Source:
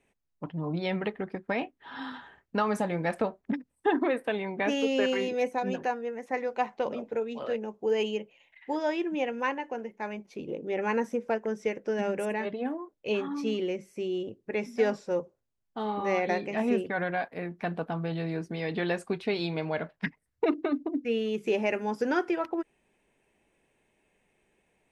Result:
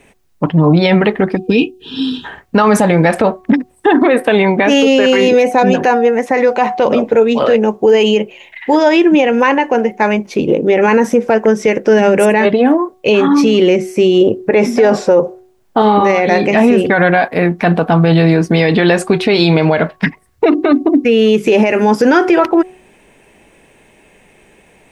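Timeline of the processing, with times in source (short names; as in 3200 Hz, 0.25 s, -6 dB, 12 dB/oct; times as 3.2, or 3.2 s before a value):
1.36–2.25 spectral gain 480–2400 Hz -27 dB
14.21–15.82 bell 650 Hz +7.5 dB 2.6 oct
whole clip: de-hum 370.1 Hz, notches 3; maximiser +25 dB; gain -1 dB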